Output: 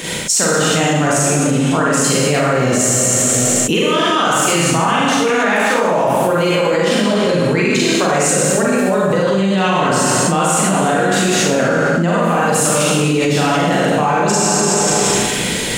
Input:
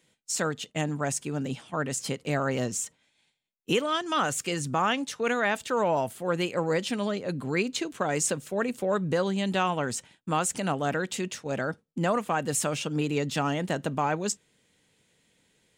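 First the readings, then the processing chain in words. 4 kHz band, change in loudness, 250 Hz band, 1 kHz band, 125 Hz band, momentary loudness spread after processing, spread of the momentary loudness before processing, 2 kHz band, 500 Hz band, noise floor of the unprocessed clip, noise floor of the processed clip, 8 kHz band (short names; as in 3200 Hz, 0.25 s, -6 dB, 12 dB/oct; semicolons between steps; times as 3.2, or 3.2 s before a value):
+16.0 dB, +15.0 dB, +15.0 dB, +14.0 dB, +14.5 dB, 2 LU, 6 LU, +15.0 dB, +14.5 dB, -72 dBFS, -18 dBFS, +18.5 dB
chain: Schroeder reverb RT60 1.4 s, combs from 32 ms, DRR -7.5 dB; fast leveller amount 100%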